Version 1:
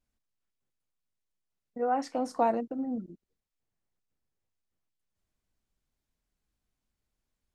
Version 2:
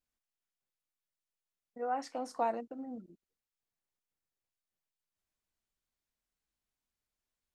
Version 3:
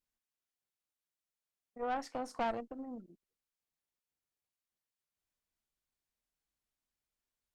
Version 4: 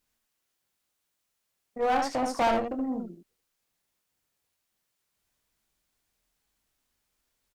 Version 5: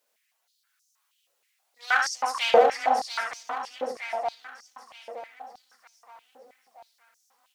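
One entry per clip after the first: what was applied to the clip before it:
bass shelf 410 Hz -9.5 dB; trim -3.5 dB
valve stage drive 32 dB, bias 0.8; trim +3 dB
early reflections 23 ms -8 dB, 76 ms -5.5 dB; in parallel at -6 dB: wavefolder -34.5 dBFS; on the sum: trim +8 dB
coarse spectral quantiser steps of 15 dB; shuffle delay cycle 919 ms, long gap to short 3:1, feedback 39%, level -5.5 dB; step-sequenced high-pass 6.3 Hz 520–5900 Hz; trim +4 dB

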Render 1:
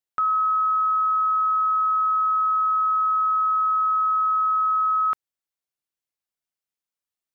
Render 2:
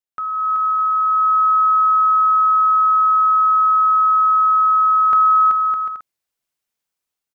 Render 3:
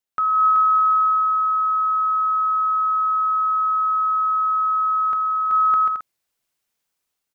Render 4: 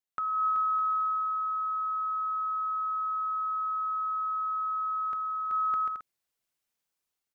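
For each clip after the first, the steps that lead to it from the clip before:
level rider gain up to 10 dB; on a send: bouncing-ball echo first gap 380 ms, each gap 0.6×, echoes 5; on the sum: trim -4 dB
compressor with a negative ratio -19 dBFS, ratio -1
dynamic bell 980 Hz, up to -6 dB, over -31 dBFS, Q 1.2; trim -7 dB

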